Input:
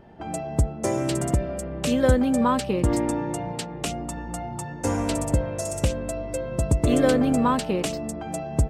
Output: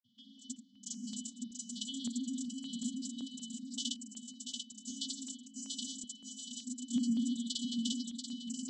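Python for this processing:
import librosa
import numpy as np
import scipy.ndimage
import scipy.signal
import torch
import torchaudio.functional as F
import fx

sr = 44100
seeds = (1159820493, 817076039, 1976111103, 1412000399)

p1 = fx.granulator(x, sr, seeds[0], grain_ms=100.0, per_s=20.0, spray_ms=100.0, spread_st=0)
p2 = fx.vocoder(p1, sr, bands=32, carrier='saw', carrier_hz=273.0)
p3 = fx.brickwall_bandstop(p2, sr, low_hz=230.0, high_hz=2800.0)
p4 = p3 + fx.echo_feedback(p3, sr, ms=686, feedback_pct=35, wet_db=-4, dry=0)
p5 = fx.filter_held_notch(p4, sr, hz=5.3, low_hz=370.0, high_hz=3600.0)
y = F.gain(torch.from_numpy(p5), 12.0).numpy()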